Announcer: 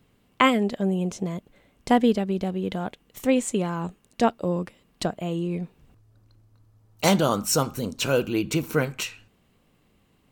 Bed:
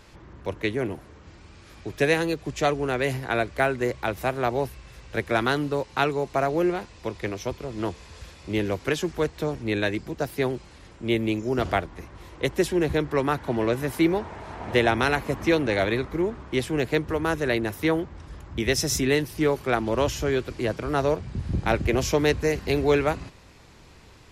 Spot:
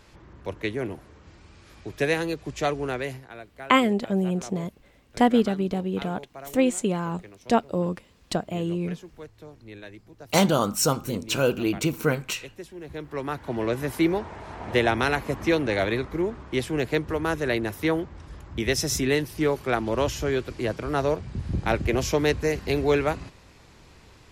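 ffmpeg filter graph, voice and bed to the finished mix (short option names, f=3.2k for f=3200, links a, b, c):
-filter_complex "[0:a]adelay=3300,volume=0dB[a];[1:a]volume=14dB,afade=t=out:st=2.89:d=0.4:silence=0.177828,afade=t=in:st=12.81:d=1.03:silence=0.149624[b];[a][b]amix=inputs=2:normalize=0"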